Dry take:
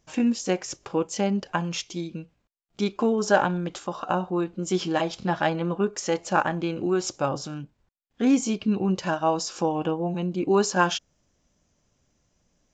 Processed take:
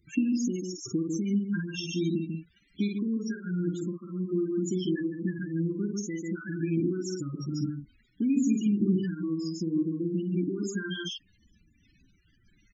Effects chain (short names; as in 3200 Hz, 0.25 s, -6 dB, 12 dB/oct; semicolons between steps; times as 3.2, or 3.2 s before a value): crackle 130/s -39 dBFS; doubler 49 ms -4 dB; limiter -15 dBFS, peak gain reduction 8 dB; echo 0.145 s -5 dB; compressor 4:1, threshold -28 dBFS, peak gain reduction 9 dB; 7.62–9.83 low shelf 330 Hz +2.5 dB; loudest bins only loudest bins 16; elliptic band-stop 330–1700 Hz, stop band 60 dB; dynamic EQ 910 Hz, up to +5 dB, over -54 dBFS, Q 1.2; noise-modulated level, depth 60%; gain +7.5 dB